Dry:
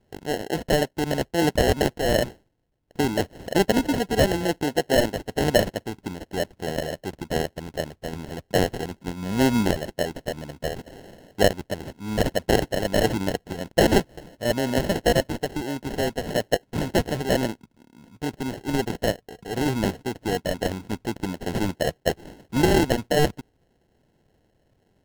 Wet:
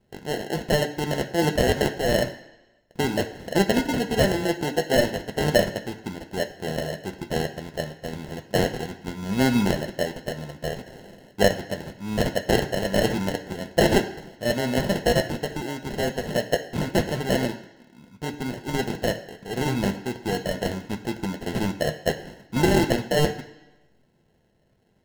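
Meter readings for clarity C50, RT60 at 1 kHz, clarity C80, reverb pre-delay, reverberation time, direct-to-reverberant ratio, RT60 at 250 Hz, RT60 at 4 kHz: 11.0 dB, 1.0 s, 14.0 dB, 3 ms, 1.0 s, 3.0 dB, 0.95 s, 1.0 s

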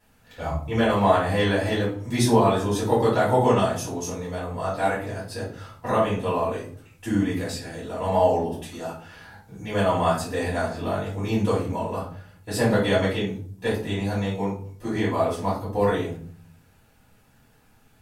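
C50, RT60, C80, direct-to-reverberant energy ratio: 5.0 dB, 0.50 s, 10.0 dB, -10.5 dB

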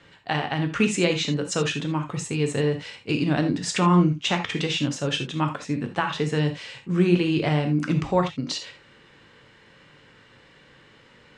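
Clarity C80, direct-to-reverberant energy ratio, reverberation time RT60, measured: 16.0 dB, 5.0 dB, not exponential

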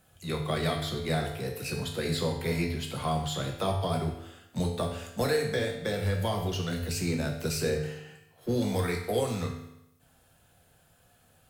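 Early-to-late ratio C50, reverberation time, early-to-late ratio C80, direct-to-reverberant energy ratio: 5.5 dB, 0.85 s, 8.0 dB, 0.0 dB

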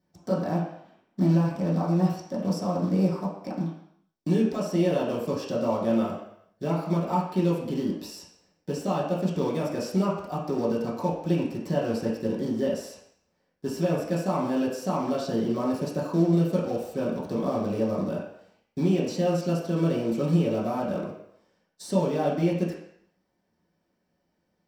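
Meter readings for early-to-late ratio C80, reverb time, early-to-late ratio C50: 6.5 dB, 0.70 s, 4.0 dB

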